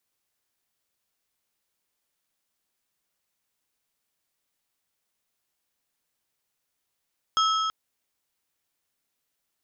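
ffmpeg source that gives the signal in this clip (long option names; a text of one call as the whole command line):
ffmpeg -f lavfi -i "aevalsrc='0.106*pow(10,-3*t/3.17)*sin(2*PI*1300*t)+0.0562*pow(10,-3*t/2.408)*sin(2*PI*3250*t)+0.0299*pow(10,-3*t/2.091)*sin(2*PI*5200*t)+0.0158*pow(10,-3*t/1.956)*sin(2*PI*6500*t)':duration=0.33:sample_rate=44100" out.wav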